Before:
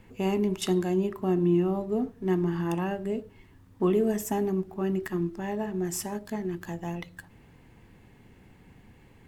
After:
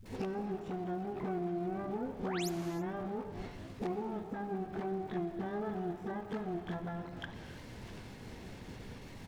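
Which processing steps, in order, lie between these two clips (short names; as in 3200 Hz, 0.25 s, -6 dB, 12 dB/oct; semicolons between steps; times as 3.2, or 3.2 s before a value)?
block floating point 3-bit; expander -52 dBFS; on a send: frequency-shifting echo 0.257 s, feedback 47%, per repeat -43 Hz, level -23.5 dB; on the sum: limiter -26 dBFS, peak gain reduction 11.5 dB; compressor 12:1, threshold -41 dBFS, peak gain reduction 13 dB; treble ducked by the level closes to 960 Hz, closed at -42 dBFS; painted sound rise, 2.2–2.44, 350–8000 Hz -48 dBFS; harmoniser +12 st -5 dB; dispersion highs, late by 55 ms, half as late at 390 Hz; crackle 510/s -65 dBFS; non-linear reverb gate 0.35 s flat, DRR 9.5 dB; gain +5.5 dB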